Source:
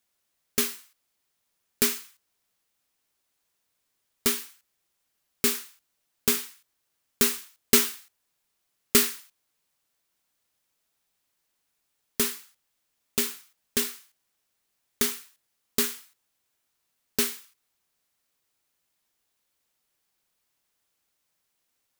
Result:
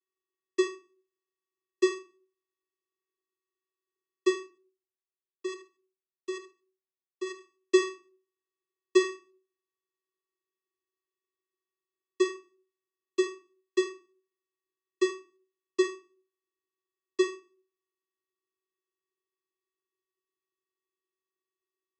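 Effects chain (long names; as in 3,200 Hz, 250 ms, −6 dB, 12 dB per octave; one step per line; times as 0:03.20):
high-shelf EQ 3,700 Hz −6 dB
leveller curve on the samples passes 2
0:04.46–0:07.40: output level in coarse steps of 14 dB
channel vocoder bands 16, square 376 Hz
convolution reverb RT60 0.35 s, pre-delay 6 ms, DRR 6.5 dB
level −2 dB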